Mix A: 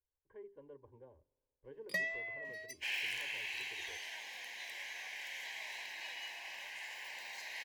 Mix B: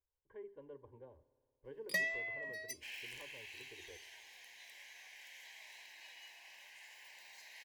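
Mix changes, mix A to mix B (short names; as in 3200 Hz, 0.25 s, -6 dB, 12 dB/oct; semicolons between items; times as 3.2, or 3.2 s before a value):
speech: send +10.0 dB; second sound -12.0 dB; master: add high shelf 4400 Hz +7.5 dB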